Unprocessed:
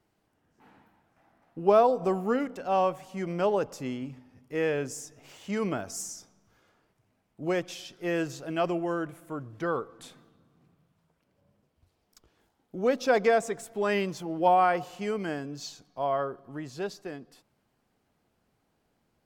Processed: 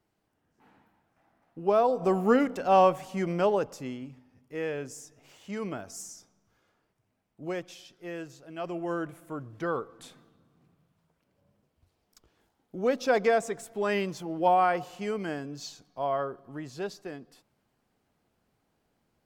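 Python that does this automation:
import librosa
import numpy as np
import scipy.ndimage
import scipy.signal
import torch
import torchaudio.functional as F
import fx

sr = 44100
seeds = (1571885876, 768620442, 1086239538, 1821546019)

y = fx.gain(x, sr, db=fx.line((1.77, -3.5), (2.29, 5.0), (3.05, 5.0), (4.11, -5.0), (7.43, -5.0), (8.49, -11.5), (8.92, -1.0)))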